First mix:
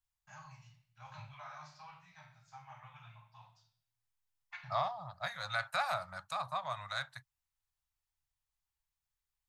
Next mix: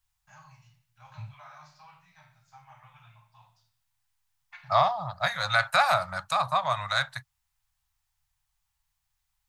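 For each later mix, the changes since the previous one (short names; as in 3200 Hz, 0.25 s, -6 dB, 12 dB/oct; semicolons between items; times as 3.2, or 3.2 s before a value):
second voice +12.0 dB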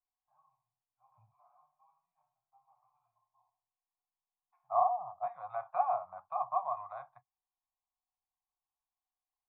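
first voice -8.0 dB; master: add vocal tract filter a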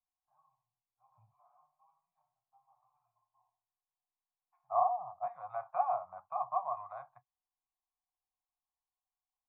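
master: add air absorption 270 m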